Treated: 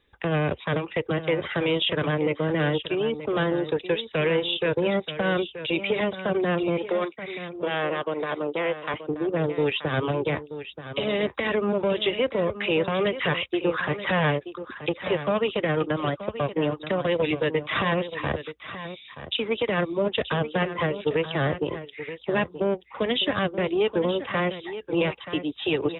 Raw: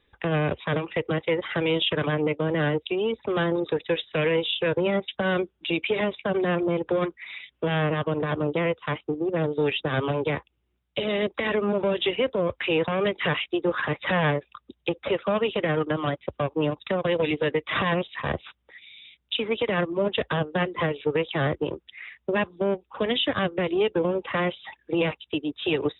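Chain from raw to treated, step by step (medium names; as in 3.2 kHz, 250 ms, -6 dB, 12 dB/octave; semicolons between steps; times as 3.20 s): 6.78–8.94 s: high-pass 330 Hz 12 dB/octave; delay 929 ms -12 dB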